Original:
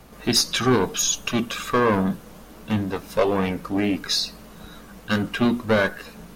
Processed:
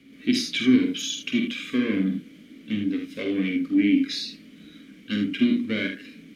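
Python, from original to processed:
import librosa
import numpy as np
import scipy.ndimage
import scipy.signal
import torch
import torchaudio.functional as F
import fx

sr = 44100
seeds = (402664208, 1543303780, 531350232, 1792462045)

p1 = fx.vowel_filter(x, sr, vowel='i')
p2 = fx.high_shelf(p1, sr, hz=7300.0, db=9.5)
p3 = p2 + fx.room_early_taps(p2, sr, ms=(48, 78), db=(-5.5, -7.5), dry=0)
y = F.gain(torch.from_numpy(p3), 8.0).numpy()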